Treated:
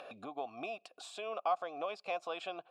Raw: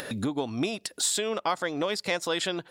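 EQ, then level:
formant filter a
+2.0 dB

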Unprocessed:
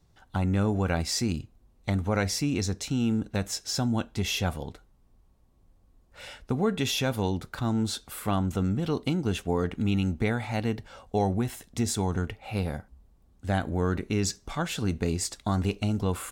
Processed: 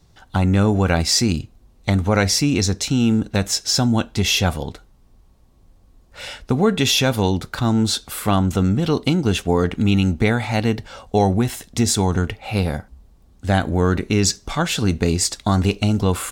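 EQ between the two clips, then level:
parametric band 4,700 Hz +3.5 dB 1.5 octaves
+9.0 dB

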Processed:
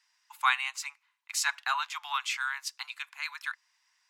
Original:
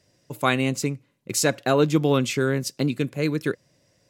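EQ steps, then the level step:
Butterworth high-pass 870 Hz 72 dB per octave
high-shelf EQ 5,700 Hz −11 dB
0.0 dB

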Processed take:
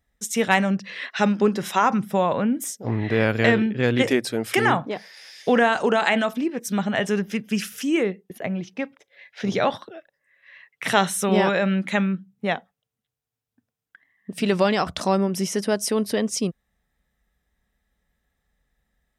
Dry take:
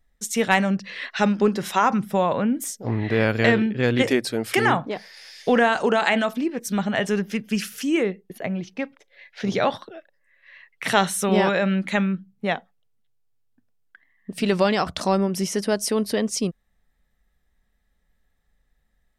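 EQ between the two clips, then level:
high-pass filter 44 Hz
notch filter 4,400 Hz, Q 14
0.0 dB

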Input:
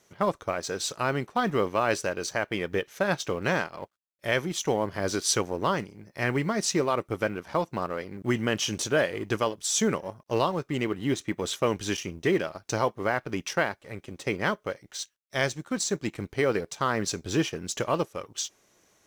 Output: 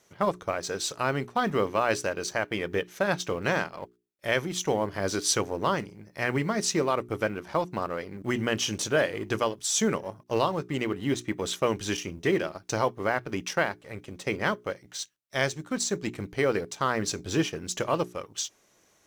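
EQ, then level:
mains-hum notches 60/120/180/240/300/360/420 Hz
0.0 dB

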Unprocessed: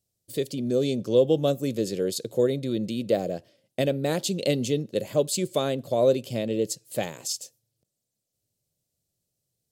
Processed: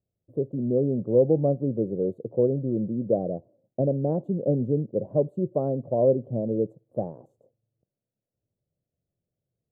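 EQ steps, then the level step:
inverse Chebyshev low-pass filter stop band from 2,000 Hz, stop band 50 dB
dynamic equaliser 140 Hz, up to +4 dB, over −38 dBFS, Q 1.4
0.0 dB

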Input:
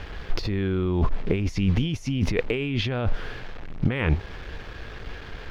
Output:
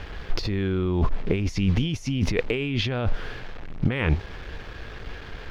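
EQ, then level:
dynamic equaliser 5,600 Hz, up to +3 dB, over −44 dBFS, Q 0.76
0.0 dB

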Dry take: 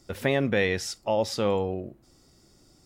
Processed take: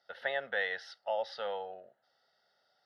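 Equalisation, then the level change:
high-pass filter 850 Hz 12 dB per octave
low-pass filter 2,600 Hz 12 dB per octave
phaser with its sweep stopped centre 1,600 Hz, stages 8
0.0 dB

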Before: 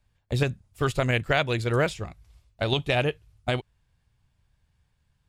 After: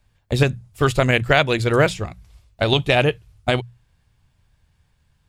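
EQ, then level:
mains-hum notches 60/120/180 Hz
+7.5 dB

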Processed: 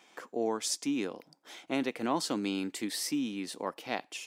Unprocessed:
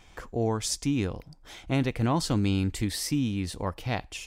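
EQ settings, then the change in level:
high-pass filter 240 Hz 24 dB per octave
−2.5 dB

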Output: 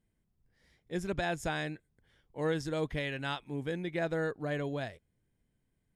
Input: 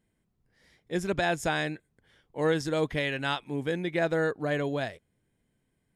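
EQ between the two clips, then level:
low-shelf EQ 100 Hz +10 dB
−6.5 dB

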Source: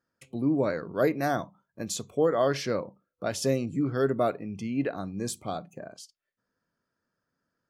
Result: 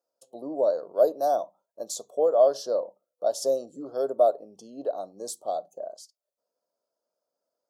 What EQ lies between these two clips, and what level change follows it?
high-pass with resonance 610 Hz, resonance Q 3.6
Butterworth band-reject 2,200 Hz, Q 0.78
parametric band 1,300 Hz −8.5 dB 1.5 octaves
0.0 dB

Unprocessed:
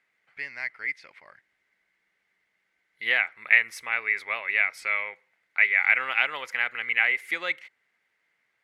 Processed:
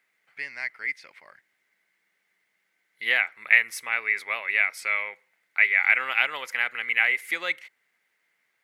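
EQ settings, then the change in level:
high-pass filter 130 Hz 12 dB per octave
high-shelf EQ 7,300 Hz +11 dB
0.0 dB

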